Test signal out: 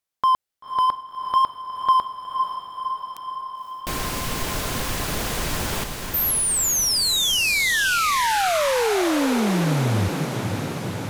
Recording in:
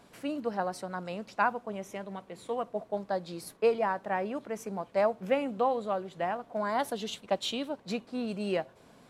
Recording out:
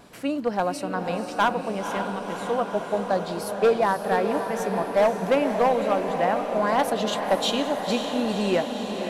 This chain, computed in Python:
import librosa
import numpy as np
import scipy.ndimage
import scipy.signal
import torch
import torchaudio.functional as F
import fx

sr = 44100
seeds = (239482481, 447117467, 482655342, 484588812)

y = np.clip(x, -10.0 ** (-22.0 / 20.0), 10.0 ** (-22.0 / 20.0))
y = fx.wow_flutter(y, sr, seeds[0], rate_hz=2.1, depth_cents=29.0)
y = fx.echo_diffused(y, sr, ms=525, feedback_pct=73, wet_db=-7)
y = y * 10.0 ** (7.5 / 20.0)